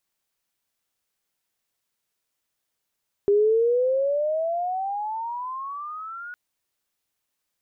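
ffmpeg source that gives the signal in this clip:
ffmpeg -f lavfi -i "aevalsrc='pow(10,(-15-19*t/3.06)/20)*sin(2*PI*400*3.06/(22.5*log(2)/12)*(exp(22.5*log(2)/12*t/3.06)-1))':duration=3.06:sample_rate=44100" out.wav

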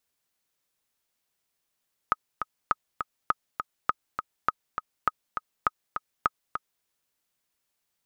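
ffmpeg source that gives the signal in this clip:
ffmpeg -f lavfi -i "aevalsrc='pow(10,(-8.5-7.5*gte(mod(t,2*60/203),60/203))/20)*sin(2*PI*1260*mod(t,60/203))*exp(-6.91*mod(t,60/203)/0.03)':duration=4.72:sample_rate=44100" out.wav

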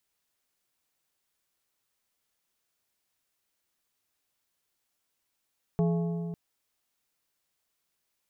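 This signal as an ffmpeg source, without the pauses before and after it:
ffmpeg -f lavfi -i "aevalsrc='0.0794*pow(10,-3*t/2.79)*sin(2*PI*169*t)+0.0376*pow(10,-3*t/2.119)*sin(2*PI*422.5*t)+0.0178*pow(10,-3*t/1.841)*sin(2*PI*676*t)+0.00841*pow(10,-3*t/1.722)*sin(2*PI*845*t)+0.00398*pow(10,-3*t/1.591)*sin(2*PI*1098.5*t)':duration=0.55:sample_rate=44100" out.wav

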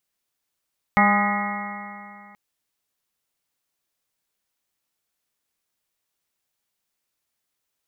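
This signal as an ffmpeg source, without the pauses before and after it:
ffmpeg -f lavfi -i "aevalsrc='0.119*pow(10,-3*t/2.5)*sin(2*PI*202.14*t)+0.015*pow(10,-3*t/2.5)*sin(2*PI*405.13*t)+0.0422*pow(10,-3*t/2.5)*sin(2*PI*609.81*t)+0.133*pow(10,-3*t/2.5)*sin(2*PI*817*t)+0.0531*pow(10,-3*t/2.5)*sin(2*PI*1027.52*t)+0.106*pow(10,-3*t/2.5)*sin(2*PI*1242.17*t)+0.0224*pow(10,-3*t/2.5)*sin(2*PI*1461.7*t)+0.0168*pow(10,-3*t/2.5)*sin(2*PI*1686.84*t)+0.0944*pow(10,-3*t/2.5)*sin(2*PI*1918.31*t)+0.0841*pow(10,-3*t/2.5)*sin(2*PI*2156.77*t)':duration=1.38:sample_rate=44100" out.wav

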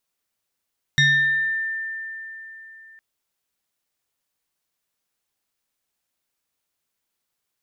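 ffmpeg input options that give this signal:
ffmpeg -f lavfi -i "aevalsrc='0.237*pow(10,-3*t/3.68)*sin(2*PI*1790*t+1.3*pow(10,-3*t/0.98)*sin(2*PI*1.08*1790*t))':duration=2.01:sample_rate=44100" out.wav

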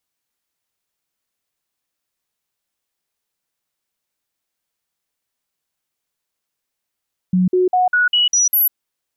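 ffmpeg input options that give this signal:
ffmpeg -f lavfi -i "aevalsrc='0.266*clip(min(mod(t,0.2),0.15-mod(t,0.2))/0.005,0,1)*sin(2*PI*183*pow(2,floor(t/0.2)/1)*mod(t,0.2))':duration=1.4:sample_rate=44100" out.wav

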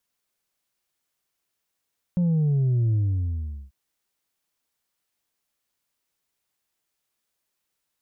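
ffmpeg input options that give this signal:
ffmpeg -f lavfi -i "aevalsrc='0.112*clip((1.54-t)/0.77,0,1)*tanh(1.33*sin(2*PI*180*1.54/log(65/180)*(exp(log(65/180)*t/1.54)-1)))/tanh(1.33)':duration=1.54:sample_rate=44100" out.wav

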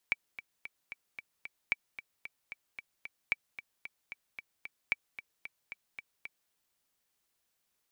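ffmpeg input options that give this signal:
ffmpeg -f lavfi -i "aevalsrc='pow(10,(-14.5-14.5*gte(mod(t,6*60/225),60/225))/20)*sin(2*PI*2310*mod(t,60/225))*exp(-6.91*mod(t,60/225)/0.03)':duration=6.4:sample_rate=44100" out.wav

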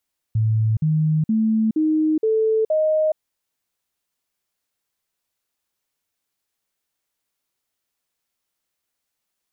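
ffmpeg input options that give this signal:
ffmpeg -f lavfi -i "aevalsrc='0.168*clip(min(mod(t,0.47),0.42-mod(t,0.47))/0.005,0,1)*sin(2*PI*110*pow(2,floor(t/0.47)/2)*mod(t,0.47))':duration=2.82:sample_rate=44100" out.wav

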